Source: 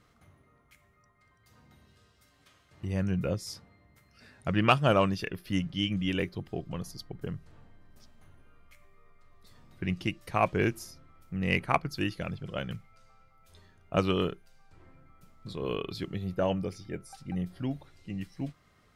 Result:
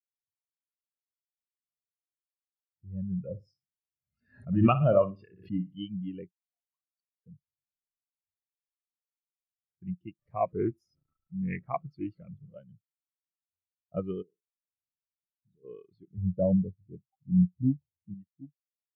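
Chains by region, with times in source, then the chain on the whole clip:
3.24–5.76 s: flutter echo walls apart 10.2 m, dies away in 0.49 s + swell ahead of each attack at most 55 dB/s
6.31–7.26 s: high-pass 960 Hz 24 dB/octave + compression 1.5:1, threshold -55 dBFS
10.19–12.58 s: jump at every zero crossing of -36 dBFS + loudspeaker Doppler distortion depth 0.21 ms
14.22–15.64 s: resonances exaggerated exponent 1.5 + compression 5:1, threshold -38 dBFS + flutter echo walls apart 10.2 m, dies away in 0.47 s
16.17–18.14 s: high-pass 61 Hz 24 dB/octave + tilt EQ -2.5 dB/octave
whole clip: high-pass 58 Hz 6 dB/octave; spectral contrast expander 2.5:1; trim -2 dB

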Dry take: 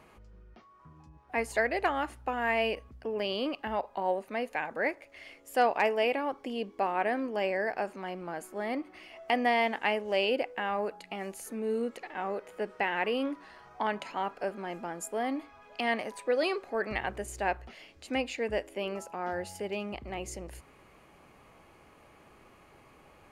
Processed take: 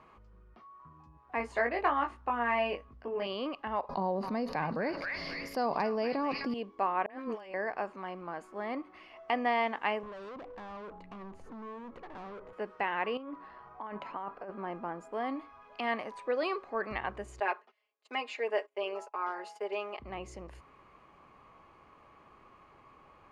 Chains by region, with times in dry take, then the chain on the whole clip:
1.38–3.27 s: treble shelf 5 kHz -5 dB + doubling 21 ms -4 dB
3.89–6.54 s: FFT filter 110 Hz 0 dB, 160 Hz +11 dB, 310 Hz -1 dB, 1.4 kHz -9 dB, 3.2 kHz -13 dB, 4.8 kHz +9 dB, 7.8 kHz -16 dB, 12 kHz +2 dB + repeats whose band climbs or falls 256 ms, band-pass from 2 kHz, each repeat 0.7 oct, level -4 dB + level flattener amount 70%
7.06–7.54 s: treble shelf 2.1 kHz +7.5 dB + compressor with a negative ratio -36 dBFS, ratio -0.5 + phase dispersion highs, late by 44 ms, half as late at 970 Hz
10.03–12.53 s: tilt EQ -4.5 dB/octave + compression, threshold -30 dBFS + hard clipper -40 dBFS
13.17–15.13 s: low-pass 1.5 kHz 6 dB/octave + compressor with a negative ratio -37 dBFS
17.40–20.00 s: gate -46 dBFS, range -27 dB + high-pass 370 Hz 24 dB/octave + comb 4.8 ms, depth 86%
whole clip: Bessel low-pass 4.1 kHz, order 2; peaking EQ 1.1 kHz +10.5 dB 0.4 oct; trim -4 dB

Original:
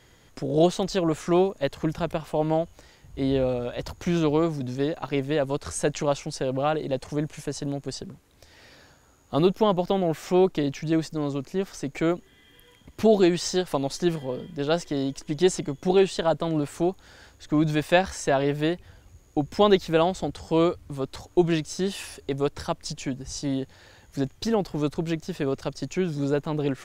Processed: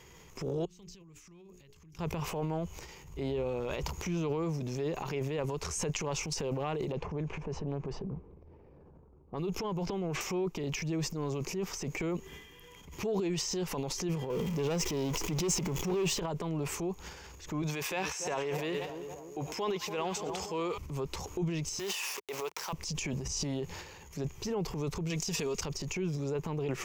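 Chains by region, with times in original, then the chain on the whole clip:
0.65–1.99 s: amplifier tone stack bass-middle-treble 6-0-2 + hum notches 60/120/180/240/300/360/420 Hz + compression 10:1, threshold -54 dBFS
6.92–10.21 s: band-stop 1.9 kHz, Q 19 + level-controlled noise filter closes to 430 Hz, open at -18.5 dBFS + compression, threshold -25 dBFS
14.30–16.20 s: jump at every zero crossing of -36 dBFS + waveshaping leveller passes 2
17.62–20.78 s: high-pass 570 Hz 6 dB/octave + two-band feedback delay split 1.1 kHz, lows 287 ms, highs 94 ms, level -14.5 dB
21.79–22.73 s: send-on-delta sampling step -41 dBFS + high-pass 670 Hz
25.10–25.61 s: peaking EQ 7.1 kHz +13.5 dB 2.5 oct + comb 4.3 ms, depth 44%
whole clip: rippled EQ curve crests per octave 0.77, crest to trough 9 dB; compression 6:1, threshold -31 dBFS; transient shaper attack -6 dB, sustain +10 dB

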